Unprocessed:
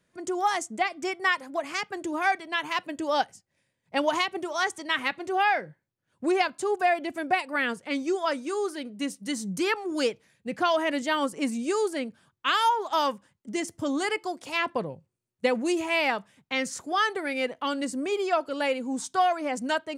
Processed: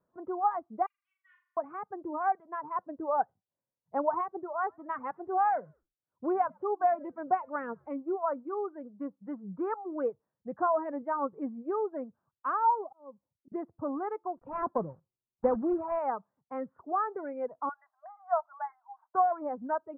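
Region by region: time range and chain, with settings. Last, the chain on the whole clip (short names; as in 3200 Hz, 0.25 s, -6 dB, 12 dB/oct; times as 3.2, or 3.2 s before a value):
0.86–1.57 inverse Chebyshev high-pass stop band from 700 Hz, stop band 70 dB + comb 6.8 ms, depth 52% + flutter echo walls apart 6.9 m, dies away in 0.94 s
4.58–7.98 high shelf 2800 Hz +8.5 dB + frequency-shifting echo 0.105 s, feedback 36%, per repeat -93 Hz, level -23 dB
12.84–13.52 Chebyshev low-pass 620 Hz + auto swell 0.666 s
14.37–15.99 block floating point 3-bit + low shelf 360 Hz +7.5 dB
17.69–19.15 brick-wall FIR band-pass 610–2200 Hz + modulation noise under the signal 22 dB
whole clip: steep low-pass 1200 Hz 36 dB/oct; reverb removal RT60 1.3 s; low shelf 470 Hz -10 dB; gain +1 dB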